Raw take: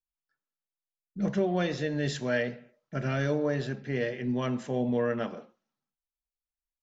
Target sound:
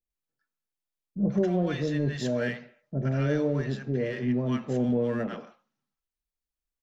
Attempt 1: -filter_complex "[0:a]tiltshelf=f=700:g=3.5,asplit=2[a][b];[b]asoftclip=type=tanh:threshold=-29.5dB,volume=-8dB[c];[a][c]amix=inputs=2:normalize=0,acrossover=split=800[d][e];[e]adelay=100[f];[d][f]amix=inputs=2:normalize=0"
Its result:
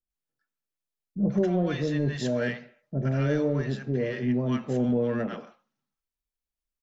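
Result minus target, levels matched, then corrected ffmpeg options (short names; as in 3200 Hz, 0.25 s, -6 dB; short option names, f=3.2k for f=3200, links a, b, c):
soft clip: distortion -4 dB
-filter_complex "[0:a]tiltshelf=f=700:g=3.5,asplit=2[a][b];[b]asoftclip=type=tanh:threshold=-38.5dB,volume=-8dB[c];[a][c]amix=inputs=2:normalize=0,acrossover=split=800[d][e];[e]adelay=100[f];[d][f]amix=inputs=2:normalize=0"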